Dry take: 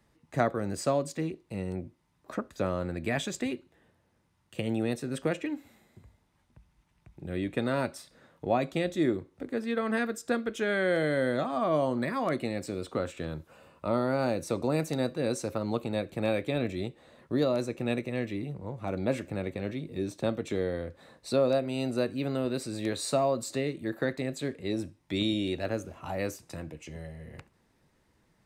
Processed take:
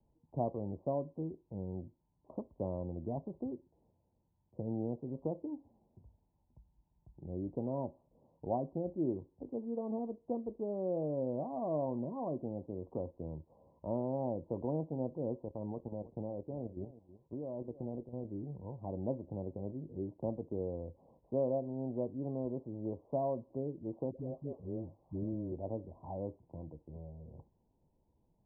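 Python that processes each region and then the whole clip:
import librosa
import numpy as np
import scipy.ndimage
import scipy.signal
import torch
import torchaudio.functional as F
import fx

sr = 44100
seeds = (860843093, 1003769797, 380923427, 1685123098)

y = fx.chain(x, sr, fx.level_steps(step_db=11),
    fx.echo_single(ms=320, db=-16.0), at=(15.43, 18.25))
y = fx.chain(y, sr, fx.crossing_spikes(level_db=-30.0),
    fx.comb(ms=1.6, depth=0.31),
    fx.dispersion(late='highs', ms=131.0, hz=820.0), at=(24.11, 25.52))
y = scipy.signal.sosfilt(scipy.signal.butter(16, 1000.0, 'lowpass', fs=sr, output='sos'), y)
y = fx.low_shelf(y, sr, hz=72.0, db=8.5)
y = y * 10.0 ** (-8.0 / 20.0)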